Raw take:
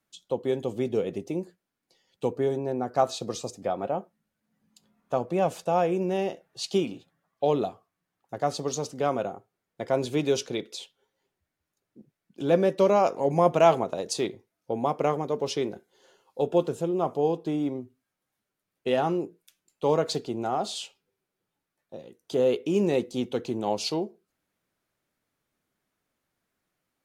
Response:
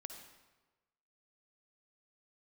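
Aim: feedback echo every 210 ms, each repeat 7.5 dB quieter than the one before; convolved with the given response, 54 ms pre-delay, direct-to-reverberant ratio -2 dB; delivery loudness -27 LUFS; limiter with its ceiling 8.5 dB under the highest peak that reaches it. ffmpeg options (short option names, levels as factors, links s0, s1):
-filter_complex "[0:a]alimiter=limit=0.168:level=0:latency=1,aecho=1:1:210|420|630|840|1050:0.422|0.177|0.0744|0.0312|0.0131,asplit=2[s0][s1];[1:a]atrim=start_sample=2205,adelay=54[s2];[s1][s2]afir=irnorm=-1:irlink=0,volume=2[s3];[s0][s3]amix=inputs=2:normalize=0,volume=0.75"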